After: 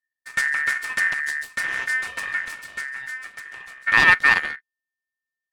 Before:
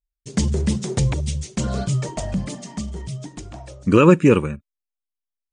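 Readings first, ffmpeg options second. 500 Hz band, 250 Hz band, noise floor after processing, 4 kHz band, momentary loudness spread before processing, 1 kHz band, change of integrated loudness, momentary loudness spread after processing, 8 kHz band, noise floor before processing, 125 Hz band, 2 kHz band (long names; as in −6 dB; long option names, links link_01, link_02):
−21.0 dB, −23.5 dB, below −85 dBFS, +3.5 dB, 19 LU, +0.5 dB, 0.0 dB, 19 LU, −4.5 dB, below −85 dBFS, −24.5 dB, +16.0 dB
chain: -af "aeval=exprs='abs(val(0))':channel_layout=same,aeval=exprs='val(0)*sin(2*PI*1800*n/s)':channel_layout=same"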